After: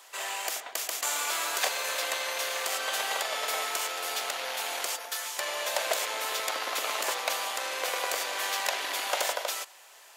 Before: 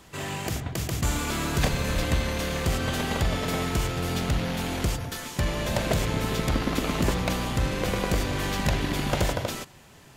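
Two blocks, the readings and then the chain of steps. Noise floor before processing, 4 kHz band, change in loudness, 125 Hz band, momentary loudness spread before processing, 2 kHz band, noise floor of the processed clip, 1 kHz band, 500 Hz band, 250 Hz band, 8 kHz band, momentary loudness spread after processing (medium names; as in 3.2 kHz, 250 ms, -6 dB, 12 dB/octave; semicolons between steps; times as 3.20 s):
-51 dBFS, +2.0 dB, -2.5 dB, under -40 dB, 5 LU, +0.5 dB, -53 dBFS, 0.0 dB, -5.0 dB, -25.5 dB, +4.0 dB, 4 LU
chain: high-pass 580 Hz 24 dB/octave; treble shelf 5.2 kHz +5.5 dB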